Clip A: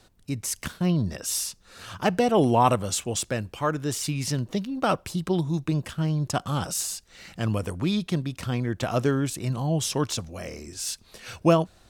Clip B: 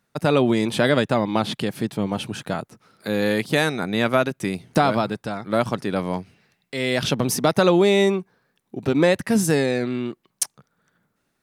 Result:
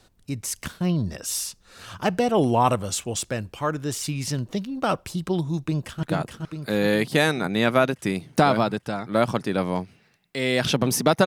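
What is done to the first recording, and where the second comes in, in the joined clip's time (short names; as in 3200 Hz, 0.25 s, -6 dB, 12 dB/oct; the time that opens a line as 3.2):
clip A
5.56–6.03 echo throw 0.42 s, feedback 60%, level -4.5 dB
6.03 switch to clip B from 2.41 s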